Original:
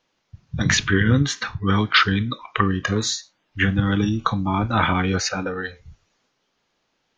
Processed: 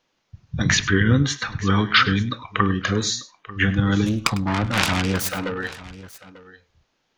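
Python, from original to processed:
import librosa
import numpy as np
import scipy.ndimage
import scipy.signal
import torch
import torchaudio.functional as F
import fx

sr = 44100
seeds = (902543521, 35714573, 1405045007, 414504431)

y = fx.self_delay(x, sr, depth_ms=0.66, at=(4.06, 5.58))
y = fx.echo_multitap(y, sr, ms=(101, 892), db=(-17.0, -18.0))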